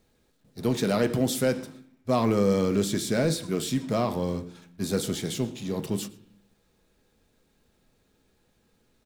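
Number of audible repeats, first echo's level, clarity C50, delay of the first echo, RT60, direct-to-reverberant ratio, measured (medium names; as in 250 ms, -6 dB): 1, -23.5 dB, 16.0 dB, 115 ms, 0.65 s, 8.5 dB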